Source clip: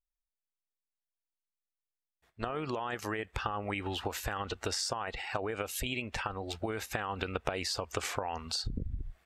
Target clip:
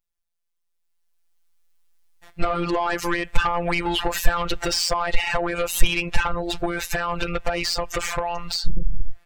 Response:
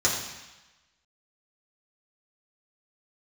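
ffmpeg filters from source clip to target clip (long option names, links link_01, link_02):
-filter_complex "[0:a]dynaudnorm=framelen=270:gausssize=9:maxgain=15dB,afftfilt=real='hypot(re,im)*cos(PI*b)':imag='0':win_size=1024:overlap=0.75,asplit=2[link_01][link_02];[link_02]acompressor=threshold=-35dB:ratio=6,volume=-3dB[link_03];[link_01][link_03]amix=inputs=2:normalize=0,asoftclip=type=tanh:threshold=-17dB,asubboost=boost=7.5:cutoff=74,volume=4dB"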